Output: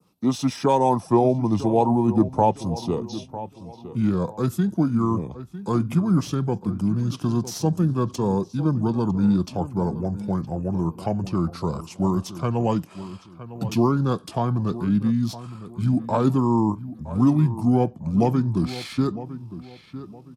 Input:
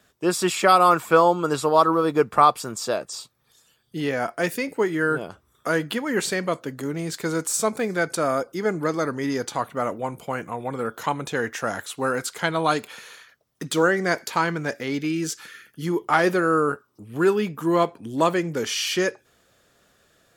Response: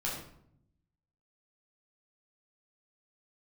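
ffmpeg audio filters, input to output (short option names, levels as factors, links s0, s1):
-filter_complex "[0:a]equalizer=f=250:t=o:w=0.67:g=11,equalizer=f=2500:t=o:w=0.67:g=-12,equalizer=f=10000:t=o:w=0.67:g=-4,asplit=2[s0][s1];[s1]adelay=957,lowpass=f=2700:p=1,volume=0.2,asplit=2[s2][s3];[s3]adelay=957,lowpass=f=2700:p=1,volume=0.31,asplit=2[s4][s5];[s5]adelay=957,lowpass=f=2700:p=1,volume=0.31[s6];[s0][s2][s4][s6]amix=inputs=4:normalize=0,acrossover=split=130|870|1900[s7][s8][s9][s10];[s7]dynaudnorm=f=290:g=7:m=5.96[s11];[s10]aeval=exprs='clip(val(0),-1,0.0398)':c=same[s12];[s11][s8][s9][s12]amix=inputs=4:normalize=0,adynamicequalizer=threshold=0.00708:dfrequency=4500:dqfactor=0.87:tfrequency=4500:tqfactor=0.87:attack=5:release=100:ratio=0.375:range=3:mode=cutabove:tftype=bell,asetrate=32097,aresample=44100,atempo=1.37395,highpass=86,volume=0.75"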